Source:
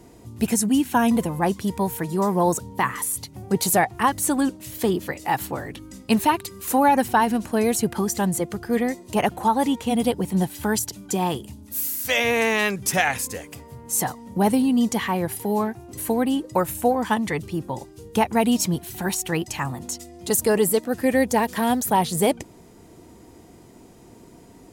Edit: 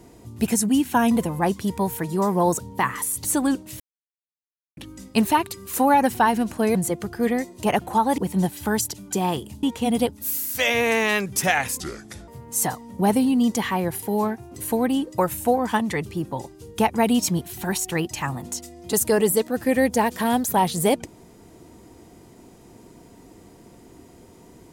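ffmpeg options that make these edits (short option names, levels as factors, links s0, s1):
-filter_complex "[0:a]asplit=10[s0][s1][s2][s3][s4][s5][s6][s7][s8][s9];[s0]atrim=end=3.242[s10];[s1]atrim=start=4.178:end=4.74,asetpts=PTS-STARTPTS,afade=t=out:st=0.558:d=0.004:c=hsin[s11];[s2]atrim=start=4.74:end=5.71,asetpts=PTS-STARTPTS,volume=0[s12];[s3]atrim=start=5.71:end=7.692,asetpts=PTS-STARTPTS,afade=t=in:d=0.004:c=hsin[s13];[s4]atrim=start=8.248:end=9.682[s14];[s5]atrim=start=10.158:end=11.612[s15];[s6]atrim=start=9.678:end=10.162[s16];[s7]atrim=start=11.608:end=13.304[s17];[s8]atrim=start=13.3:end=13.65,asetpts=PTS-STARTPTS,asetrate=32193,aresample=44100[s18];[s9]atrim=start=13.646[s19];[s11][s12][s13]concat=n=3:v=0:a=1[s20];[s10][s20]acrossfade=d=0.004:c1=hsin:c2=hsin[s21];[s21][s14]acrossfade=d=0.004:c1=hsin:c2=hsin[s22];[s22][s15]acrossfade=d=0.004:c1=hsin:c2=hsin[s23];[s23][s16]acrossfade=d=0.004:c1=hsin:c2=hsin[s24];[s24][s17]acrossfade=d=0.004:c1=hsin:c2=hsin[s25];[s25][s18]acrossfade=d=0.004:c1=hsin:c2=hsin[s26];[s26][s19]acrossfade=d=0.004:c1=hsin:c2=hsin"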